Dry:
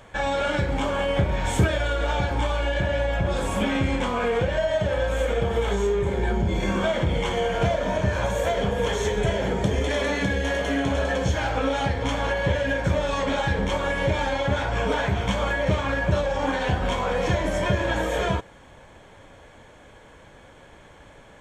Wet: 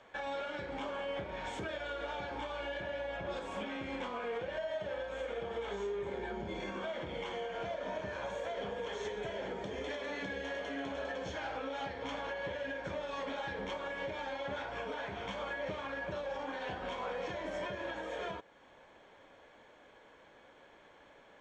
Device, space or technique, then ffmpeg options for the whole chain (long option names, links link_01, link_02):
DJ mixer with the lows and highs turned down: -filter_complex "[0:a]acrossover=split=230 6200:gain=0.178 1 0.0708[link_01][link_02][link_03];[link_01][link_02][link_03]amix=inputs=3:normalize=0,alimiter=limit=-21dB:level=0:latency=1:release=359,volume=-9dB"